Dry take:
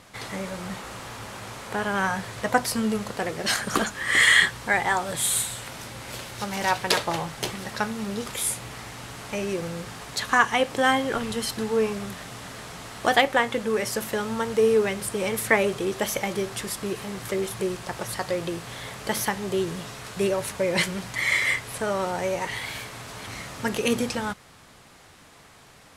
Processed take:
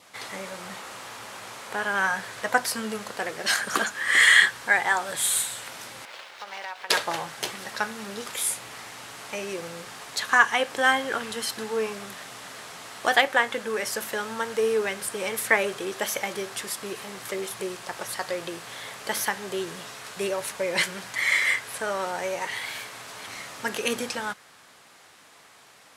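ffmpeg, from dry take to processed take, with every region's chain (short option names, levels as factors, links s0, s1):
-filter_complex "[0:a]asettb=1/sr,asplit=3[s0][s1][s2];[s0]atrim=end=6.054[s3];[s1]atrim=start=6.05:end=6.9,asetpts=PTS-STARTPTS,afade=t=in:d=0.004:c=qsin,afade=t=out:st=0.846:d=0.004:c=qsin,acrossover=split=440 4900:gain=0.126 1 0.0708[s4][s5][s6];[s4][s5][s6]amix=inputs=3:normalize=0,acompressor=threshold=0.0316:ratio=5:attack=3.2:release=140:knee=1:detection=peak,aeval=exprs='sgn(val(0))*max(abs(val(0))-0.00299,0)':c=same[s7];[s2]atrim=start=6.896[s8];[s3][s7]acrossfade=d=0.004:c1=hsin:c2=qsin[s9];[s9][s8]acrossfade=d=0.004:c1=qsin:c2=hsin,adynamicequalizer=threshold=0.0112:dfrequency=1600:dqfactor=5:tfrequency=1600:tqfactor=5:attack=5:release=100:ratio=0.375:range=2.5:mode=boostabove:tftype=bell,highpass=f=560:p=1"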